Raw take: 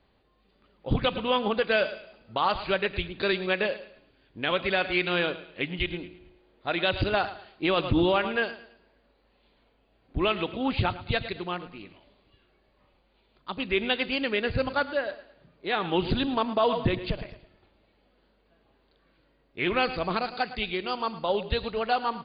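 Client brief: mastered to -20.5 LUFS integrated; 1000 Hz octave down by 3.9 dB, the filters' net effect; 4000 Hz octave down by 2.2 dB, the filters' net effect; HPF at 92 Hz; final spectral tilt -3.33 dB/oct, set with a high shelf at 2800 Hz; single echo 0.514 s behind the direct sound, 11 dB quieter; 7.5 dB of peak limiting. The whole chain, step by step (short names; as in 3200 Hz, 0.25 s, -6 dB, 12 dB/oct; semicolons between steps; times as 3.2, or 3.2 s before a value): HPF 92 Hz; bell 1000 Hz -6 dB; high shelf 2800 Hz +7.5 dB; bell 4000 Hz -8.5 dB; limiter -21 dBFS; echo 0.514 s -11 dB; gain +12 dB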